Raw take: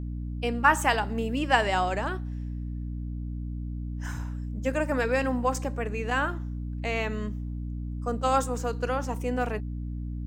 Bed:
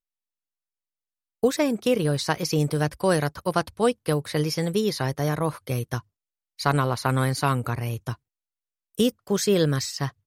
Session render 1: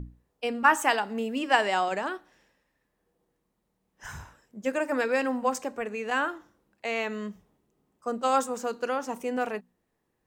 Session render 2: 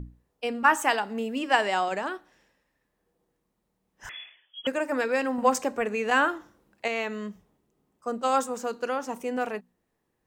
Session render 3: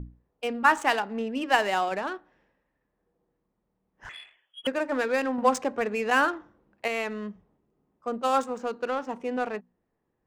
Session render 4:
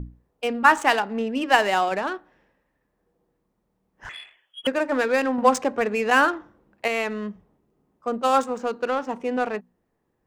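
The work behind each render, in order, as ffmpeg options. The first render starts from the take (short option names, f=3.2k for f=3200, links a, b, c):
-af "bandreject=f=60:t=h:w=6,bandreject=f=120:t=h:w=6,bandreject=f=180:t=h:w=6,bandreject=f=240:t=h:w=6,bandreject=f=300:t=h:w=6"
-filter_complex "[0:a]asettb=1/sr,asplit=3[a][b][c];[a]atrim=end=4.094[d];[b]atrim=start=4.09:end=4.67,asetpts=PTS-STARTPTS,afade=t=in:d=0.004:c=qsin,afade=t=out:st=0.576:d=0.004:c=qsin,lowpass=f=3k:t=q:w=0.5098,lowpass=f=3k:t=q:w=0.6013,lowpass=f=3k:t=q:w=0.9,lowpass=f=3k:t=q:w=2.563,afreqshift=-3500[e];[c]atrim=start=4.666[f];[d][e]acrossfade=d=0.004:c1=hsin:c2=qsin[g];[g][f]acrossfade=d=0.004:c1=qsin:c2=hsin,asettb=1/sr,asplit=3[h][i][j];[h]atrim=end=5.384[k];[i]atrim=start=5.38:end=6.88,asetpts=PTS-STARTPTS,afade=t=in:d=0.004:c=qsin,afade=t=out:st=1.496:d=0.004:c=qsin,acontrast=26[l];[j]atrim=start=6.876[m];[k][l]acrossfade=d=0.004:c1=hsin:c2=qsin[n];[n][m]acrossfade=d=0.004:c1=qsin:c2=hsin"
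-af "adynamicsmooth=sensitivity=8:basefreq=2.2k"
-af "volume=4.5dB"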